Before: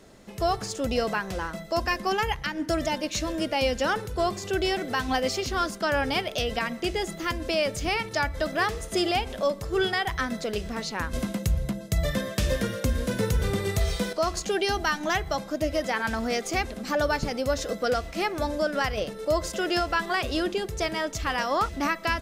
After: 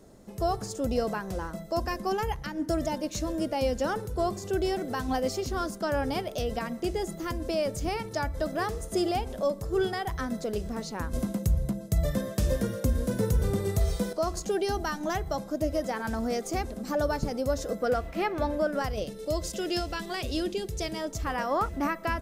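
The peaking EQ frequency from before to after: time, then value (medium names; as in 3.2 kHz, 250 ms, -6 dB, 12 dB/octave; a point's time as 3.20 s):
peaking EQ -12 dB 2.2 oct
17.60 s 2.6 kHz
18.41 s 8.7 kHz
19.09 s 1.3 kHz
20.86 s 1.3 kHz
21.36 s 4 kHz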